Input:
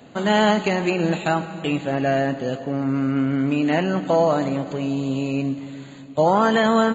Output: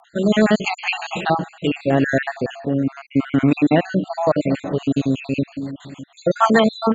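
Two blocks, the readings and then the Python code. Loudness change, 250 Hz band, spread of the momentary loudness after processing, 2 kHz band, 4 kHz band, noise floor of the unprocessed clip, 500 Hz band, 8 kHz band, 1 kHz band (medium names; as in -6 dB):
+1.5 dB, +2.5 dB, 10 LU, +2.0 dB, +0.5 dB, -40 dBFS, +0.5 dB, no reading, -0.5 dB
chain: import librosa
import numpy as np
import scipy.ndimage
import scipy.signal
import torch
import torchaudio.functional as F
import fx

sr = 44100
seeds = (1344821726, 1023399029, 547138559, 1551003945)

y = fx.spec_dropout(x, sr, seeds[0], share_pct=56)
y = fx.rotary_switch(y, sr, hz=0.8, then_hz=6.7, switch_at_s=4.48)
y = y * librosa.db_to_amplitude(8.0)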